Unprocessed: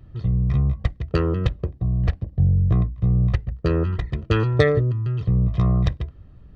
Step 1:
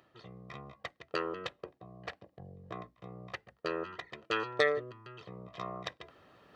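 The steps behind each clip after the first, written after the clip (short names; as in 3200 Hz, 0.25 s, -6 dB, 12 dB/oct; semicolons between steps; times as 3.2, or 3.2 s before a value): HPF 610 Hz 12 dB/oct; reverse; upward compressor, threshold -44 dBFS; reverse; gain -4.5 dB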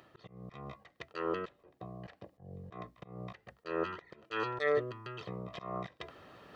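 auto swell 0.18 s; gain +5.5 dB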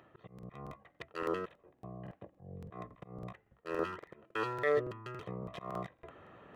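Wiener smoothing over 9 samples; crackling interface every 0.28 s, samples 2048, repeat, from 0.34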